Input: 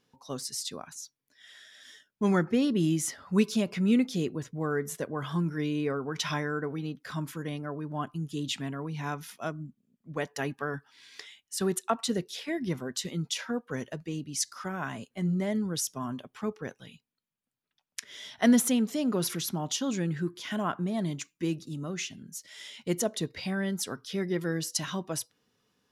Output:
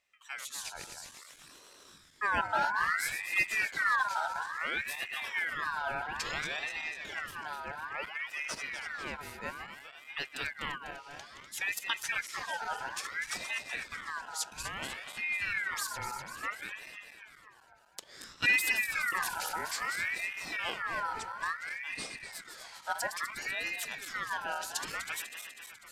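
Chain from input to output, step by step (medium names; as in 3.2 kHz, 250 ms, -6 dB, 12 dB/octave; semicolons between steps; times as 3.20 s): backward echo that repeats 124 ms, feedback 78%, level -8 dB; ring modulator with a swept carrier 1.7 kHz, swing 35%, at 0.59 Hz; trim -3 dB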